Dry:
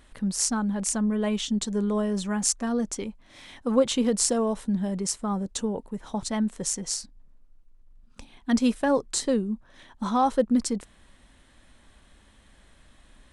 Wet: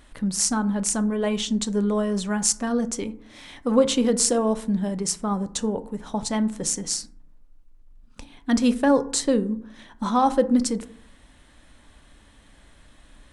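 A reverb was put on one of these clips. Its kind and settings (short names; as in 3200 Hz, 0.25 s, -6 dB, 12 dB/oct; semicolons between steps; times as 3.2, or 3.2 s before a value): FDN reverb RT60 0.6 s, low-frequency decay 1.35×, high-frequency decay 0.4×, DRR 11 dB; gain +3 dB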